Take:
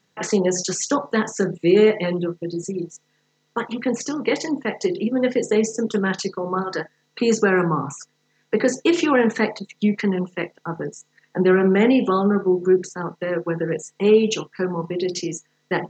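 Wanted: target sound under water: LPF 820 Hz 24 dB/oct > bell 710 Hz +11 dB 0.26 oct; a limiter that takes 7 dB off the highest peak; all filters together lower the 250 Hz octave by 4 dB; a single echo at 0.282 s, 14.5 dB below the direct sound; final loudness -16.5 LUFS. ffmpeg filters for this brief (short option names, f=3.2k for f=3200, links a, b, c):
-af "equalizer=f=250:t=o:g=-6,alimiter=limit=-14.5dB:level=0:latency=1,lowpass=f=820:w=0.5412,lowpass=f=820:w=1.3066,equalizer=f=710:t=o:w=0.26:g=11,aecho=1:1:282:0.188,volume=10dB"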